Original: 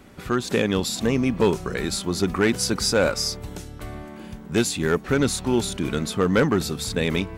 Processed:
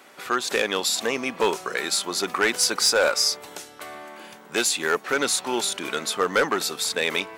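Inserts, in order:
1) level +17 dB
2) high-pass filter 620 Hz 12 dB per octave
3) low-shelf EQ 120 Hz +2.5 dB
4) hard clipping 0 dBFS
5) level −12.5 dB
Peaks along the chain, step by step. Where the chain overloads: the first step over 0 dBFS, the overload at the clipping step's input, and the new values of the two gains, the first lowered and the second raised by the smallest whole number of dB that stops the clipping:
+5.0, +8.5, +8.5, 0.0, −12.5 dBFS
step 1, 8.5 dB
step 1 +8 dB, step 5 −3.5 dB

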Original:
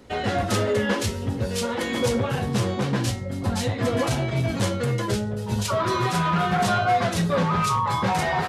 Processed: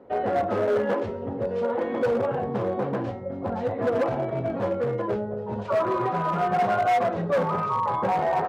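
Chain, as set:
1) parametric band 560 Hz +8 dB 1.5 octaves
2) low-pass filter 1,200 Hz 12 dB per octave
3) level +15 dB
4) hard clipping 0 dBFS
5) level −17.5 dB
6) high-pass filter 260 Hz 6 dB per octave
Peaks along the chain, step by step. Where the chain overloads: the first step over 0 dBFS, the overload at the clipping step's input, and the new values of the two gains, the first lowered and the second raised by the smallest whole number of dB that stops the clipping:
−6.0, −6.5, +8.5, 0.0, −17.5, −14.5 dBFS
step 3, 8.5 dB
step 3 +6 dB, step 5 −8.5 dB

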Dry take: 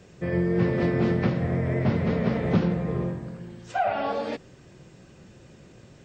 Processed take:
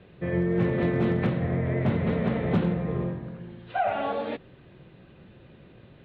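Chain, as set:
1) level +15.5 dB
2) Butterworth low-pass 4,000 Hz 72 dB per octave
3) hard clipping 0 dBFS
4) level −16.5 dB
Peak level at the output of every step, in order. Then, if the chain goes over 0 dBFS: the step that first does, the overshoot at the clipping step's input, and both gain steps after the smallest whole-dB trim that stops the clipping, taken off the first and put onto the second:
+6.0, +6.0, 0.0, −16.5 dBFS
step 1, 6.0 dB
step 1 +9.5 dB, step 4 −10.5 dB

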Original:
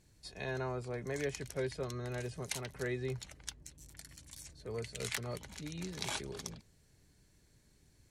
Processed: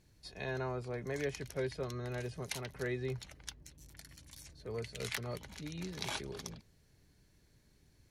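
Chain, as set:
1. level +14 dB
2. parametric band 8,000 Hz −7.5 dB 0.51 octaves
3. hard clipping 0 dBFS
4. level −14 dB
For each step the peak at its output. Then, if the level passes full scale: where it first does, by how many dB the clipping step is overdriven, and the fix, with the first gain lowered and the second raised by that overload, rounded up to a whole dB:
−3.0, −4.5, −4.5, −18.5 dBFS
no step passes full scale

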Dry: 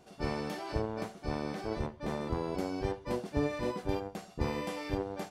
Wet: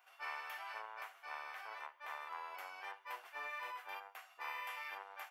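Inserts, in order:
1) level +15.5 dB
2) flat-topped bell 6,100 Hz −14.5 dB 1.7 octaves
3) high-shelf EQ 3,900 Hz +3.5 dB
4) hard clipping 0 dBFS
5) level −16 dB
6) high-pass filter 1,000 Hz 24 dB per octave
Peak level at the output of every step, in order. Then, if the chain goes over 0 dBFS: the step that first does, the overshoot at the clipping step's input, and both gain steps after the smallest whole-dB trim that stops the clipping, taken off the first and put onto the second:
−2.5, −2.5, −2.5, −2.5, −18.5, −30.5 dBFS
no step passes full scale

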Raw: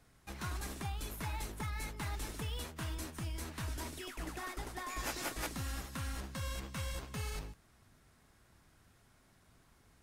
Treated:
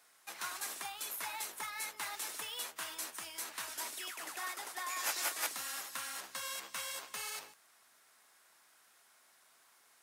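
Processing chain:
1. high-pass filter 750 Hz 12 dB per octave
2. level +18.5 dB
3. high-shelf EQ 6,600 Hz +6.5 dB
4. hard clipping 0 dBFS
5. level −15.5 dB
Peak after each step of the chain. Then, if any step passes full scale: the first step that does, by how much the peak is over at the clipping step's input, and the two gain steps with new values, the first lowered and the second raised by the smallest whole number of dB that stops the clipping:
−27.0, −8.5, −6.0, −6.0, −21.5 dBFS
no step passes full scale

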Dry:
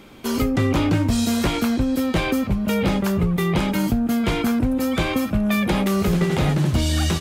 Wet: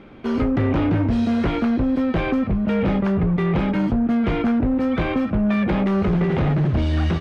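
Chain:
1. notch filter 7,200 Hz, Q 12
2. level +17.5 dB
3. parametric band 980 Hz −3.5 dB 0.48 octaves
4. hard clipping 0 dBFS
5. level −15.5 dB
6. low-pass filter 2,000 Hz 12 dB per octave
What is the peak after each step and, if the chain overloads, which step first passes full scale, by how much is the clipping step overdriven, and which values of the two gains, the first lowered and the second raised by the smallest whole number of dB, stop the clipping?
−10.0, +7.5, +7.5, 0.0, −15.5, −15.0 dBFS
step 2, 7.5 dB
step 2 +9.5 dB, step 5 −7.5 dB

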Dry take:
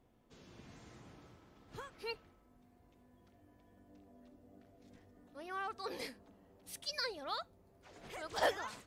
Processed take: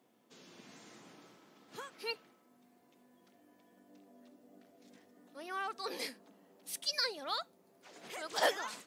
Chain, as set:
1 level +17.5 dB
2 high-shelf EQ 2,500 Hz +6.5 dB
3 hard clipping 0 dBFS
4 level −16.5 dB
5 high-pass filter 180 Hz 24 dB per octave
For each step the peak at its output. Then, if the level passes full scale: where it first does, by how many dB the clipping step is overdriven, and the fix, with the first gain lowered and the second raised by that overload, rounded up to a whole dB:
−4.0, −2.0, −2.0, −18.5, −16.5 dBFS
no step passes full scale

